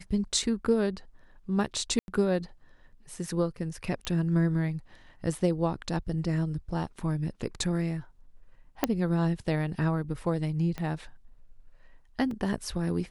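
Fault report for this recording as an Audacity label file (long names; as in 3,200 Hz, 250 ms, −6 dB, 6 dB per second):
1.990000	2.080000	drop-out 91 ms
4.050000	4.050000	click −19 dBFS
8.840000	8.840000	click −9 dBFS
10.780000	10.780000	click −21 dBFS
12.310000	12.310000	drop-out 2.4 ms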